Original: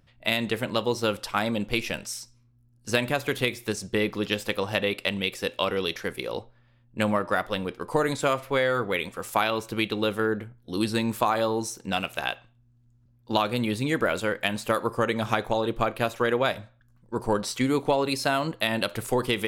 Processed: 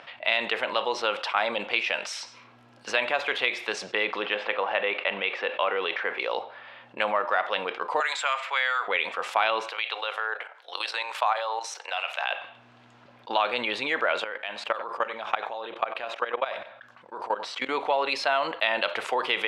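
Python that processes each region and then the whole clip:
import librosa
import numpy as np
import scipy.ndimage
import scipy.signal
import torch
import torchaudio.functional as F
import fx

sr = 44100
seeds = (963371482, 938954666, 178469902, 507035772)

y = fx.chain(x, sr, fx.law_mismatch(coded='mu'),
    fx.bandpass_edges(low_hz=140.0, high_hz=2300.0), at=(4.22, 6.2))
y = fx.chain(y, sr, fx.highpass(hz=1200.0, slope=12),
    fx.peak_eq(hz=7500.0, db=13.0, octaves=0.24),
    fx.band_squash(depth_pct=40), at=(8.0, 8.88))
y = fx.chain(y, sr, fx.highpass(hz=560.0, slope=24),
    fx.high_shelf(hz=5800.0, db=5.5),
    fx.level_steps(step_db=12), at=(9.69, 12.31))
y = fx.chain(y, sr, fx.level_steps(step_db=22),
    fx.echo_single(ms=94, db=-22.5), at=(14.24, 17.69))
y = scipy.signal.sosfilt(scipy.signal.cheby1(2, 1.0, [690.0, 3000.0], 'bandpass', fs=sr, output='sos'), y)
y = fx.env_flatten(y, sr, amount_pct=50)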